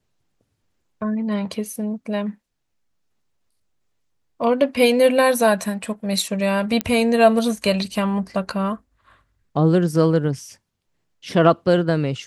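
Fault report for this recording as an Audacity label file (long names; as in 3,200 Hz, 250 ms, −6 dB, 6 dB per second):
6.810000	6.810000	click −6 dBFS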